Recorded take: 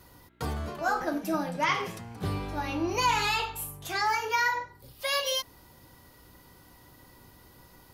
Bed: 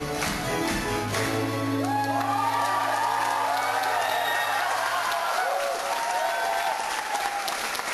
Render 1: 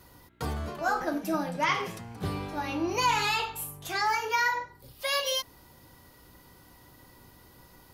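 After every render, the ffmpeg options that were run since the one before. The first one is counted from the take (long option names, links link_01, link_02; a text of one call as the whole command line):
ffmpeg -i in.wav -af "bandreject=frequency=50:width_type=h:width=4,bandreject=frequency=100:width_type=h:width=4" out.wav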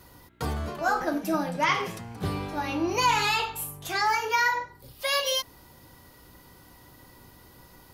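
ffmpeg -i in.wav -af "volume=2.5dB" out.wav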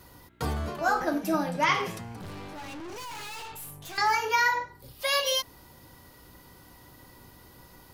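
ffmpeg -i in.wav -filter_complex "[0:a]asettb=1/sr,asplit=3[link_01][link_02][link_03];[link_01]atrim=end=2.214[link_04];[link_02]atrim=start=2.21:end=3.98,asetpts=PTS-STARTPTS,afade=type=in:duration=0.004:curve=qsin,afade=type=out:start_time=1.766:duration=0.004:curve=qsin,aeval=exprs='(tanh(89.1*val(0)+0.4)-tanh(0.4))/89.1':channel_layout=same[link_05];[link_03]atrim=start=3.976[link_06];[link_04][link_05]acrossfade=duration=0.004:curve1=hsin:curve2=qsin[link_07];[link_07][link_06]acrossfade=duration=0.004:curve1=qsin:curve2=hsin" out.wav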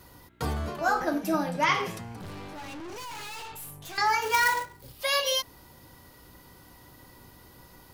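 ffmpeg -i in.wav -filter_complex "[0:a]asettb=1/sr,asplit=3[link_01][link_02][link_03];[link_01]atrim=end=4.224[link_04];[link_02]atrim=start=4.22:end=4.98,asetpts=PTS-STARTPTS,afade=type=in:duration=0.004:curve=qsin,afade=type=out:start_time=0.756:duration=0.004:curve=qsin,acrusher=bits=2:mode=log:mix=0:aa=0.000001[link_05];[link_03]atrim=start=4.976[link_06];[link_04][link_05]acrossfade=duration=0.004:curve1=hsin:curve2=qsin[link_07];[link_07][link_06]acrossfade=duration=0.004:curve1=qsin:curve2=hsin" out.wav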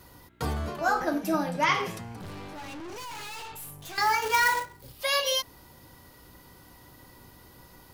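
ffmpeg -i in.wav -filter_complex "[0:a]asettb=1/sr,asplit=3[link_01][link_02][link_03];[link_01]atrim=end=3.784[link_04];[link_02]atrim=start=3.78:end=4.6,asetpts=PTS-STARTPTS,afade=type=in:duration=0.004:curve=qsin,afade=type=out:start_time=0.816:duration=0.004:curve=qsin,acrusher=bits=4:mode=log:mix=0:aa=0.000001[link_05];[link_03]atrim=start=4.596[link_06];[link_04][link_05]acrossfade=duration=0.004:curve1=hsin:curve2=qsin[link_07];[link_07][link_06]acrossfade=duration=0.004:curve1=qsin:curve2=hsin" out.wav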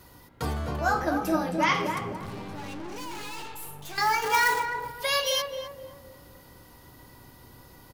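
ffmpeg -i in.wav -filter_complex "[0:a]asplit=2[link_01][link_02];[link_02]adelay=259,lowpass=frequency=850:poles=1,volume=-3dB,asplit=2[link_03][link_04];[link_04]adelay=259,lowpass=frequency=850:poles=1,volume=0.48,asplit=2[link_05][link_06];[link_06]adelay=259,lowpass=frequency=850:poles=1,volume=0.48,asplit=2[link_07][link_08];[link_08]adelay=259,lowpass=frequency=850:poles=1,volume=0.48,asplit=2[link_09][link_10];[link_10]adelay=259,lowpass=frequency=850:poles=1,volume=0.48,asplit=2[link_11][link_12];[link_12]adelay=259,lowpass=frequency=850:poles=1,volume=0.48[link_13];[link_01][link_03][link_05][link_07][link_09][link_11][link_13]amix=inputs=7:normalize=0" out.wav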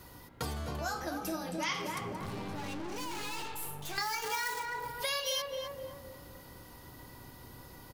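ffmpeg -i in.wav -filter_complex "[0:a]acrossover=split=3100[link_01][link_02];[link_01]acompressor=threshold=-35dB:ratio=6[link_03];[link_02]alimiter=level_in=3.5dB:limit=-24dB:level=0:latency=1:release=282,volume=-3.5dB[link_04];[link_03][link_04]amix=inputs=2:normalize=0" out.wav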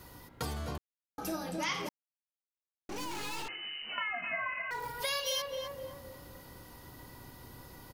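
ffmpeg -i in.wav -filter_complex "[0:a]asettb=1/sr,asplit=3[link_01][link_02][link_03];[link_01]atrim=end=3.484[link_04];[link_02]atrim=start=3.48:end=4.71,asetpts=PTS-STARTPTS,afade=type=in:duration=0.004:curve=qsin,afade=type=out:start_time=1.226:duration=0.004:curve=qsin,lowpass=frequency=2600:width_type=q:width=0.5098,lowpass=frequency=2600:width_type=q:width=0.6013,lowpass=frequency=2600:width_type=q:width=0.9,lowpass=frequency=2600:width_type=q:width=2.563,afreqshift=-3000[link_05];[link_03]atrim=start=4.706[link_06];[link_04][link_05]acrossfade=duration=0.004:curve1=hsin:curve2=qsin[link_07];[link_07][link_06]acrossfade=duration=0.004:curve1=qsin:curve2=hsin,asplit=5[link_08][link_09][link_10][link_11][link_12];[link_08]atrim=end=0.78,asetpts=PTS-STARTPTS,afade=type=out:start_time=0.776:duration=0.004:curve=hsin[link_13];[link_09]atrim=start=0.78:end=1.18,asetpts=PTS-STARTPTS,volume=0[link_14];[link_10]atrim=start=1.18:end=1.89,asetpts=PTS-STARTPTS,afade=type=in:duration=0.004:curve=hsin,afade=type=out:start_time=0.706:duration=0.004:curve=hsin[link_15];[link_11]atrim=start=1.89:end=2.89,asetpts=PTS-STARTPTS,volume=0[link_16];[link_12]atrim=start=2.89,asetpts=PTS-STARTPTS,afade=type=in:duration=0.004:curve=hsin[link_17];[link_13][link_14][link_15][link_16][link_17]concat=n=5:v=0:a=1" out.wav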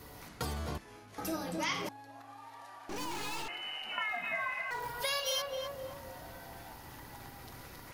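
ffmpeg -i in.wav -i bed.wav -filter_complex "[1:a]volume=-26dB[link_01];[0:a][link_01]amix=inputs=2:normalize=0" out.wav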